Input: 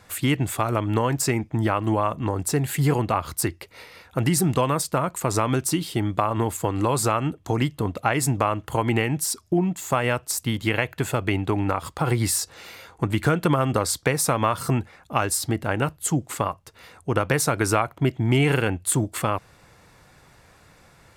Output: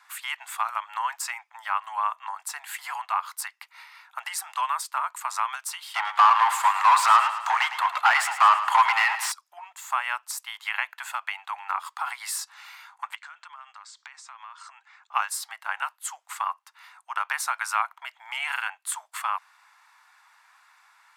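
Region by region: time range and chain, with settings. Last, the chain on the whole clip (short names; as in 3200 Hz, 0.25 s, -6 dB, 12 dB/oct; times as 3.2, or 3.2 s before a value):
5.94–9.32 overdrive pedal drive 27 dB, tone 2200 Hz, clips at -5 dBFS + feedback echo 0.108 s, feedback 56%, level -12 dB
13.15–15.14 Chebyshev low-pass 7600 Hz, order 4 + bell 250 Hz -8.5 dB 2.7 oct + compressor, threshold -38 dBFS
whole clip: steep high-pass 890 Hz 48 dB/oct; high shelf 2200 Hz -10.5 dB; gain +3 dB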